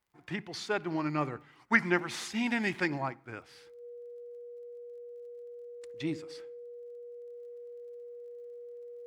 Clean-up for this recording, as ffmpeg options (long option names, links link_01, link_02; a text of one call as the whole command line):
ffmpeg -i in.wav -af "adeclick=threshold=4,bandreject=frequency=480:width=30" out.wav